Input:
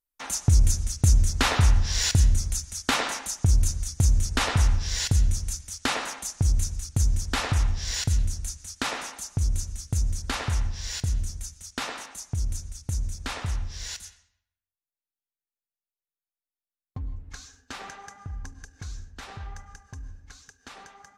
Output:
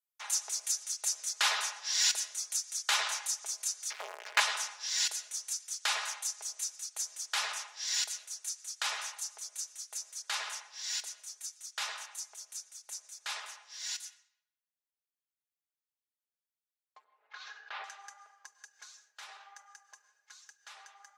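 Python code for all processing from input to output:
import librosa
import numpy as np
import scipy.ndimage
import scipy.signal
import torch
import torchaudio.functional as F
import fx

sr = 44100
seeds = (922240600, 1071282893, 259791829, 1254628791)

y = fx.chain(x, sr, fx.crossing_spikes(level_db=-25.5),
    fx.lowpass(hz=2400.0, slope=24),
    fx.leveller(passes=5), at=(3.9, 4.4))
y = fx.chain(y, sr, fx.lowpass(hz=3900.0, slope=24),
    fx.high_shelf(hz=2300.0, db=-9.0),
    fx.env_flatten(amount_pct=70), at=(17.04, 17.84))
y = scipy.signal.sosfilt(scipy.signal.bessel(8, 1000.0, 'highpass', norm='mag', fs=sr, output='sos'), y)
y = y + 0.5 * np.pad(y, (int(4.8 * sr / 1000.0), 0))[:len(y)]
y = fx.dynamic_eq(y, sr, hz=5400.0, q=0.71, threshold_db=-39.0, ratio=4.0, max_db=3)
y = y * librosa.db_to_amplitude(-5.0)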